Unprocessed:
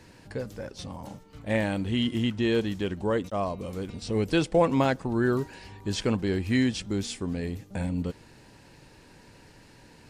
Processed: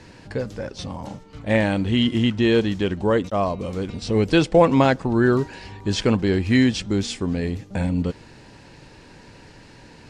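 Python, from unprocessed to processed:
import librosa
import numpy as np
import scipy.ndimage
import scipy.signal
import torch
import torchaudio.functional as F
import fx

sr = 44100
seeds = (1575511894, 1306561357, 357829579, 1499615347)

y = scipy.signal.sosfilt(scipy.signal.butter(2, 7100.0, 'lowpass', fs=sr, output='sos'), x)
y = F.gain(torch.from_numpy(y), 7.0).numpy()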